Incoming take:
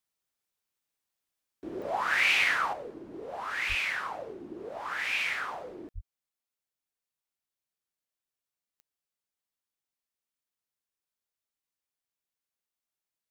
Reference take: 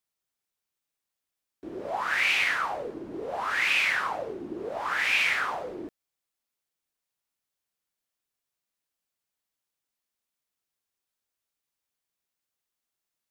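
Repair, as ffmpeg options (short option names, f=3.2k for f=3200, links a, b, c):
-filter_complex "[0:a]adeclick=t=4,asplit=3[a][b][c];[a]afade=t=out:st=3.68:d=0.02[d];[b]highpass=f=140:w=0.5412,highpass=f=140:w=1.3066,afade=t=in:st=3.68:d=0.02,afade=t=out:st=3.8:d=0.02[e];[c]afade=t=in:st=3.8:d=0.02[f];[d][e][f]amix=inputs=3:normalize=0,asplit=3[g][h][i];[g]afade=t=out:st=5.94:d=0.02[j];[h]highpass=f=140:w=0.5412,highpass=f=140:w=1.3066,afade=t=in:st=5.94:d=0.02,afade=t=out:st=6.06:d=0.02[k];[i]afade=t=in:st=6.06:d=0.02[l];[j][k][l]amix=inputs=3:normalize=0,asetnsamples=n=441:p=0,asendcmd='2.73 volume volume 6dB',volume=0dB"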